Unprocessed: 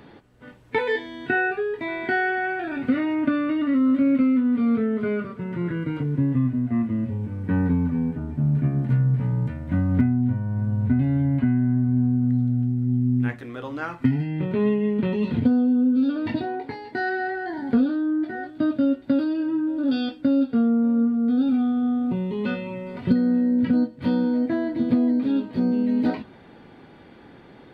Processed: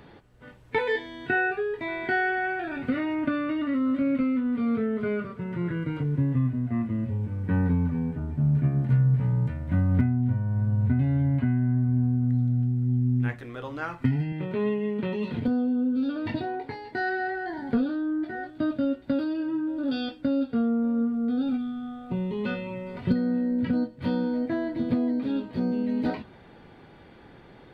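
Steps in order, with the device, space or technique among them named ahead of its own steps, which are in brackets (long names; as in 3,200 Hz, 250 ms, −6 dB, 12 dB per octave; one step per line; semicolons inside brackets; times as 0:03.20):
0:14.32–0:15.48: high-pass filter 220 Hz 6 dB per octave
0:21.56–0:22.10: parametric band 770 Hz → 250 Hz −15 dB 1.5 octaves
low shelf boost with a cut just above (low-shelf EQ 70 Hz +7.5 dB; parametric band 260 Hz −4.5 dB 0.66 octaves)
level −2 dB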